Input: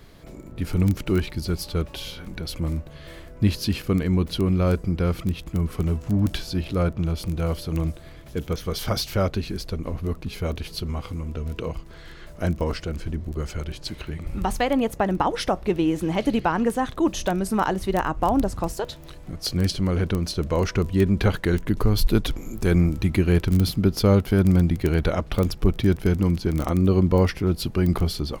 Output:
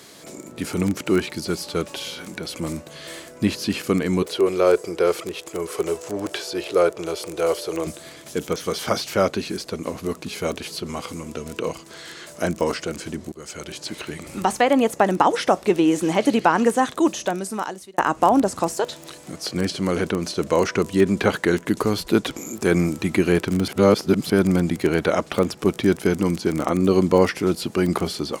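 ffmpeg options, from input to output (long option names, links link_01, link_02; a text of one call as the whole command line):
ffmpeg -i in.wav -filter_complex "[0:a]asettb=1/sr,asplit=3[link_01][link_02][link_03];[link_01]atrim=end=4.224[link_04];[link_02]atrim=start=4.22:end=7.87,asetpts=PTS-STARTPTS,afade=type=in:duration=0.004:curve=qsin,afade=type=out:start_time=3.646:duration=0.004:curve=qsin,lowshelf=frequency=310:width_type=q:width=3:gain=-9[link_05];[link_03]atrim=start=7.866[link_06];[link_04][link_05]acrossfade=duration=0.004:curve1=hsin:curve2=qsin[link_07];[link_07][link_06]acrossfade=duration=0.004:curve1=qsin:curve2=hsin,asplit=5[link_08][link_09][link_10][link_11][link_12];[link_08]atrim=end=13.32,asetpts=PTS-STARTPTS,afade=type=out:start_time=13.316:duration=0.004:curve=hsin:silence=0.125893[link_13];[link_09]atrim=start=13.32:end=17.98,asetpts=PTS-STARTPTS,afade=type=in:duration=0.48:silence=0.125893,afade=type=out:start_time=3.51:duration=1.15[link_14];[link_10]atrim=start=17.98:end=23.682,asetpts=PTS-STARTPTS,afade=type=in:duration=0.004:curve=hsin[link_15];[link_11]atrim=start=23.678:end=24.302,asetpts=PTS-STARTPTS,areverse[link_16];[link_12]atrim=start=24.298[link_17];[link_13][link_14][link_15]concat=n=3:v=0:a=1[link_18];[link_18][link_16]acrossfade=duration=0.004:curve1=hsin:curve2=hsin[link_19];[link_19][link_17]acrossfade=duration=0.004:curve1=hsin:curve2=hsin,highpass=240,acrossover=split=2600[link_20][link_21];[link_21]acompressor=threshold=-46dB:ratio=4:attack=1:release=60[link_22];[link_20][link_22]amix=inputs=2:normalize=0,equalizer=frequency=7700:width=0.76:gain=13.5,volume=5.5dB" out.wav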